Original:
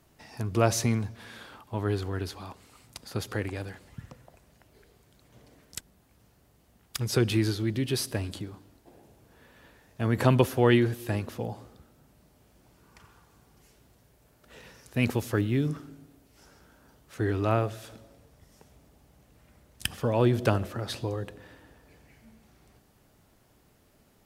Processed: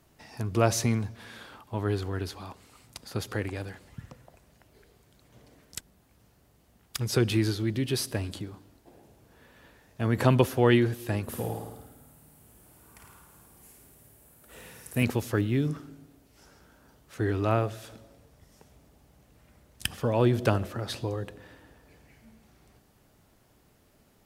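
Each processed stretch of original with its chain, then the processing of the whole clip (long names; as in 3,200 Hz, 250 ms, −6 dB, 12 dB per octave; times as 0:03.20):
0:11.23–0:15.03: high shelf with overshoot 7,300 Hz +9.5 dB, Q 1.5 + flutter between parallel walls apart 9.2 metres, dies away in 0.89 s
whole clip: no processing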